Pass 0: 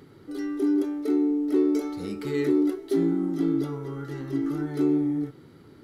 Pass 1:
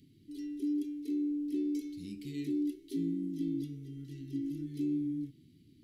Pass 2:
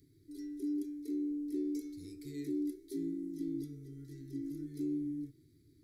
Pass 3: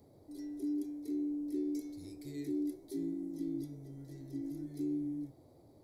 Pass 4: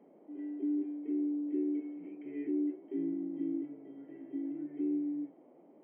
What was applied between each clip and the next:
elliptic band-stop 290–2600 Hz, stop band 80 dB; gain -8 dB
fixed phaser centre 780 Hz, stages 6; gain +2 dB
band noise 74–650 Hz -64 dBFS
brick-wall FIR band-pass 170–3200 Hz; gain +3 dB

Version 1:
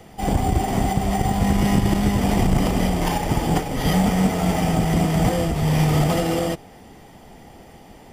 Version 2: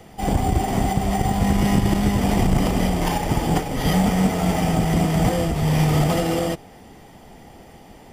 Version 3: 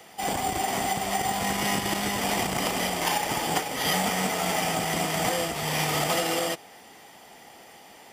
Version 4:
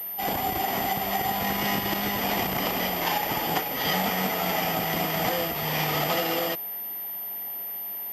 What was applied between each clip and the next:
nothing audible
HPF 1300 Hz 6 dB/oct; gain +3.5 dB
pulse-width modulation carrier 13000 Hz

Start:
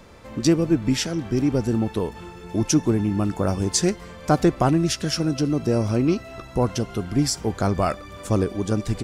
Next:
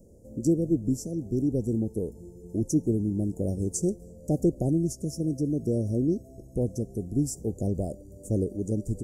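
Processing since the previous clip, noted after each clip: inverse Chebyshev band-stop 1100–3700 Hz, stop band 50 dB; gain -5 dB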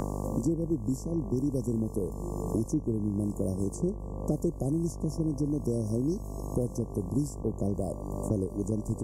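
buzz 50 Hz, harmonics 23, -39 dBFS -6 dB/oct; three-band squash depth 100%; gain -3.5 dB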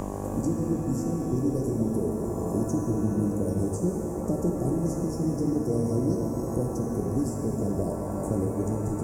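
shimmer reverb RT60 3.3 s, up +7 st, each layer -8 dB, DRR -0.5 dB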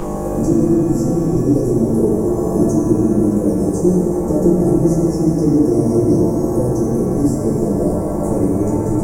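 shoebox room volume 42 m³, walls mixed, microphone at 0.9 m; gain +4.5 dB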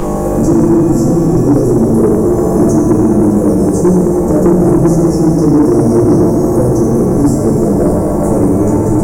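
soft clip -10.5 dBFS, distortion -15 dB; gain +8 dB

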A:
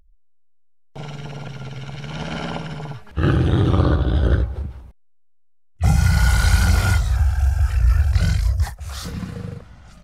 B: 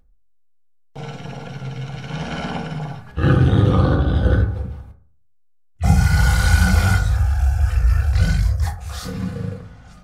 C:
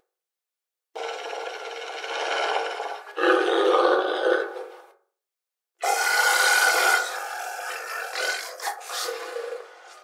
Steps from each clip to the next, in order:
reverb RT60 0.45 s, pre-delay 3 ms, DRR 1.5 dB; gain -1 dB
brick-wall FIR high-pass 330 Hz; gain +4.5 dB

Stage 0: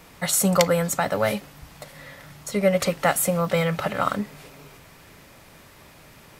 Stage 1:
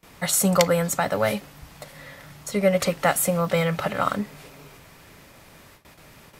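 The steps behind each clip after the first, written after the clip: gate with hold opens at -39 dBFS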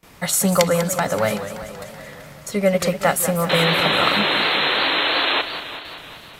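painted sound noise, 3.49–5.42, 260–4200 Hz -22 dBFS; warbling echo 0.19 s, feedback 67%, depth 167 cents, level -11.5 dB; gain +2 dB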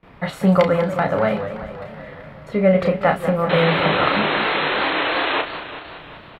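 air absorption 440 m; doubler 32 ms -6 dB; gain +2.5 dB

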